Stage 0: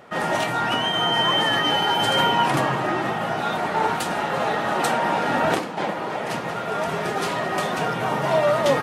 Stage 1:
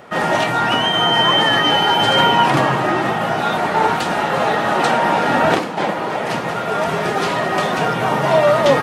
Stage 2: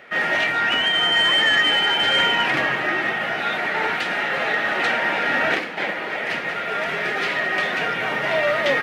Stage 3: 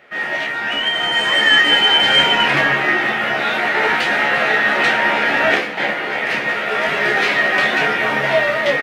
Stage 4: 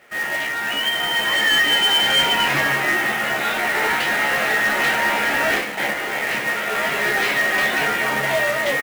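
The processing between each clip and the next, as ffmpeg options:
ffmpeg -i in.wav -filter_complex "[0:a]acrossover=split=6200[link_01][link_02];[link_02]acompressor=threshold=-46dB:ratio=4:attack=1:release=60[link_03];[link_01][link_03]amix=inputs=2:normalize=0,volume=6dB" out.wav
ffmpeg -i in.wav -filter_complex "[0:a]equalizer=frequency=125:width_type=o:width=1:gain=-4,equalizer=frequency=1000:width_type=o:width=1:gain=-10,equalizer=frequency=2000:width_type=o:width=1:gain=10,equalizer=frequency=8000:width_type=o:width=1:gain=-6,acrusher=bits=9:mode=log:mix=0:aa=0.000001,asplit=2[link_01][link_02];[link_02]highpass=frequency=720:poles=1,volume=9dB,asoftclip=type=tanh:threshold=-1dB[link_03];[link_01][link_03]amix=inputs=2:normalize=0,lowpass=frequency=4600:poles=1,volume=-6dB,volume=-7dB" out.wav
ffmpeg -i in.wav -filter_complex "[0:a]dynaudnorm=framelen=440:gausssize=5:maxgain=11.5dB,asplit=2[link_01][link_02];[link_02]aecho=0:1:14|28:0.501|0.562[link_03];[link_01][link_03]amix=inputs=2:normalize=0,volume=-4dB" out.wav
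ffmpeg -i in.wav -filter_complex "[0:a]acrusher=bits=2:mode=log:mix=0:aa=0.000001,asoftclip=type=tanh:threshold=-8.5dB,asplit=2[link_01][link_02];[link_02]adelay=15,volume=-13dB[link_03];[link_01][link_03]amix=inputs=2:normalize=0,volume=-3dB" out.wav

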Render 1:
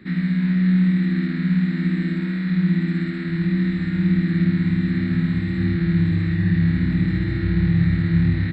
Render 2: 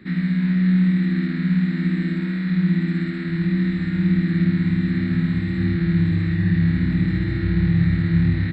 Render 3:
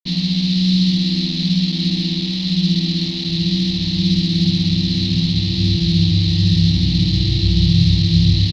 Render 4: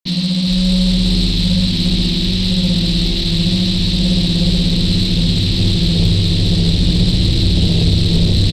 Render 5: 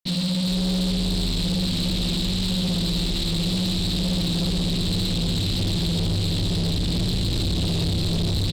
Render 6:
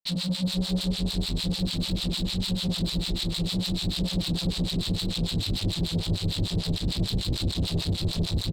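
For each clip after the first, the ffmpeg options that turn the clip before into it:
ffmpeg -i in.wav -af anull out.wav
ffmpeg -i in.wav -af "acrusher=bits=4:mix=0:aa=0.5,firequalizer=gain_entry='entry(120,0);entry(230,-10);entry(320,-6);entry(510,-15);entry(770,-14);entry(1500,-27);entry(2700,0);entry(4100,15);entry(7600,-16)':delay=0.05:min_phase=1,volume=7dB" out.wav
ffmpeg -i in.wav -filter_complex "[0:a]asoftclip=type=tanh:threshold=-14.5dB,asplit=2[link_01][link_02];[link_02]asplit=6[link_03][link_04][link_05][link_06][link_07][link_08];[link_03]adelay=409,afreqshift=-140,volume=-3.5dB[link_09];[link_04]adelay=818,afreqshift=-280,volume=-10.1dB[link_10];[link_05]adelay=1227,afreqshift=-420,volume=-16.6dB[link_11];[link_06]adelay=1636,afreqshift=-560,volume=-23.2dB[link_12];[link_07]adelay=2045,afreqshift=-700,volume=-29.7dB[link_13];[link_08]adelay=2454,afreqshift=-840,volume=-36.3dB[link_14];[link_09][link_10][link_11][link_12][link_13][link_14]amix=inputs=6:normalize=0[link_15];[link_01][link_15]amix=inputs=2:normalize=0,volume=4dB" out.wav
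ffmpeg -i in.wav -af "asoftclip=type=tanh:threshold=-17.5dB,volume=-3dB" out.wav
ffmpeg -i in.wav -filter_complex "[0:a]acrossover=split=780[link_01][link_02];[link_01]aeval=exprs='val(0)*(1-1/2+1/2*cos(2*PI*6.7*n/s))':channel_layout=same[link_03];[link_02]aeval=exprs='val(0)*(1-1/2-1/2*cos(2*PI*6.7*n/s))':channel_layout=same[link_04];[link_03][link_04]amix=inputs=2:normalize=0" out.wav

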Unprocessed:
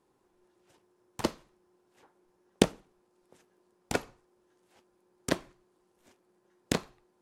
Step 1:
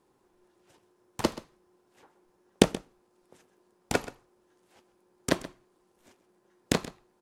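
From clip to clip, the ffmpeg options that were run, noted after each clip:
ffmpeg -i in.wav -af "aecho=1:1:129:0.15,volume=3dB" out.wav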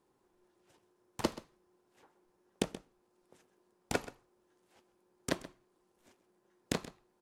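ffmpeg -i in.wav -af "alimiter=limit=-10dB:level=0:latency=1:release=444,volume=-5.5dB" out.wav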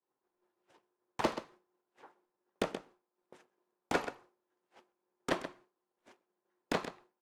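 ffmpeg -i in.wav -filter_complex "[0:a]asplit=2[link_01][link_02];[link_02]highpass=frequency=720:poles=1,volume=21dB,asoftclip=type=tanh:threshold=-15dB[link_03];[link_01][link_03]amix=inputs=2:normalize=0,lowpass=frequency=1600:poles=1,volume=-6dB,agate=range=-33dB:threshold=-51dB:ratio=3:detection=peak,volume=-2dB" out.wav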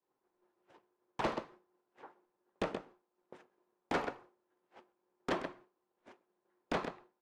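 ffmpeg -i in.wav -af "lowpass=frequency=2200:poles=1,asoftclip=type=tanh:threshold=-31.5dB,volume=4dB" out.wav

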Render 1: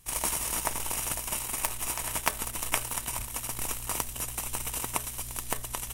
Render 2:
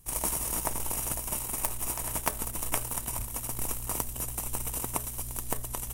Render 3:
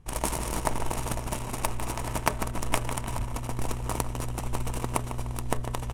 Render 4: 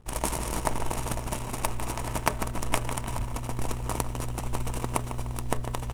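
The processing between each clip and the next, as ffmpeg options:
ffmpeg -i in.wav -af "equalizer=frequency=2800:width=0.38:gain=-10,volume=3dB" out.wav
ffmpeg -i in.wav -af "aecho=1:1:150|300|450|600|750:0.335|0.147|0.0648|0.0285|0.0126,adynamicsmooth=sensitivity=6:basefreq=2400,volume=6dB" out.wav
ffmpeg -i in.wav -af "acrusher=bits=8:mix=0:aa=0.5" out.wav

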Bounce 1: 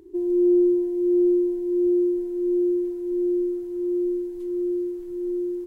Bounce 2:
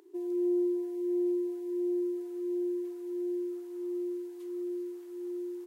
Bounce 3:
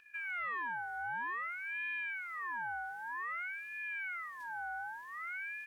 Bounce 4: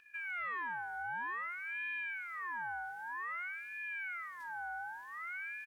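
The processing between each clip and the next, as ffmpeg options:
ffmpeg -i in.wav -af "highpass=630" out.wav
ffmpeg -i in.wav -filter_complex "[0:a]acrossover=split=400[link_01][link_02];[link_01]asoftclip=type=tanh:threshold=-36dB[link_03];[link_02]acompressor=threshold=-46dB:ratio=6[link_04];[link_03][link_04]amix=inputs=2:normalize=0,aeval=exprs='val(0)*sin(2*PI*1600*n/s+1600*0.3/0.53*sin(2*PI*0.53*n/s))':channel_layout=same" out.wav
ffmpeg -i in.wav -af "aecho=1:1:220:0.1,volume=-1dB" out.wav

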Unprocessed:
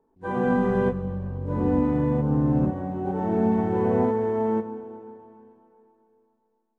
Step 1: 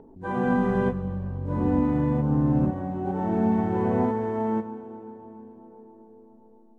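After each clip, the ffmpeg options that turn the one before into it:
ffmpeg -i in.wav -filter_complex "[0:a]equalizer=frequency=460:width_type=o:width=0.31:gain=-5.5,acrossover=split=730[link_01][link_02];[link_01]acompressor=mode=upward:threshold=-34dB:ratio=2.5[link_03];[link_03][link_02]amix=inputs=2:normalize=0" out.wav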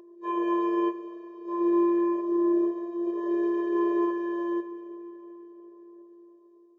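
ffmpeg -i in.wav -af "afftfilt=real='hypot(re,im)*cos(PI*b)':imag='0':win_size=512:overlap=0.75,aresample=16000,aresample=44100,afftfilt=real='re*eq(mod(floor(b*sr/1024/330),2),1)':imag='im*eq(mod(floor(b*sr/1024/330),2),1)':win_size=1024:overlap=0.75,volume=5dB" out.wav

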